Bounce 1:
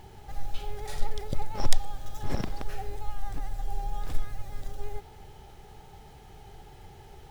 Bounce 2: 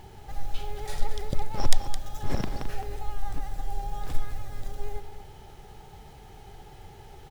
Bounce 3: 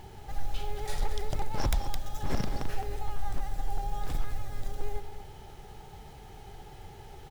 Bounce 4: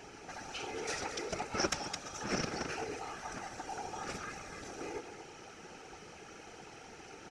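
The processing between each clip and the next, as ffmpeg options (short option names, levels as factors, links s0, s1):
-af "aecho=1:1:215:0.299,volume=1.19"
-af "aeval=exprs='0.106*(abs(mod(val(0)/0.106+3,4)-2)-1)':c=same"
-af "highpass=210,equalizer=f=300:t=q:w=4:g=4,equalizer=f=910:t=q:w=4:g=-8,equalizer=f=1400:t=q:w=4:g=9,equalizer=f=2500:t=q:w=4:g=8,equalizer=f=3500:t=q:w=4:g=-6,equalizer=f=5800:t=q:w=4:g=10,lowpass=f=8600:w=0.5412,lowpass=f=8600:w=1.3066,afftfilt=real='hypot(re,im)*cos(2*PI*random(0))':imag='hypot(re,im)*sin(2*PI*random(1))':win_size=512:overlap=0.75,volume=2.11"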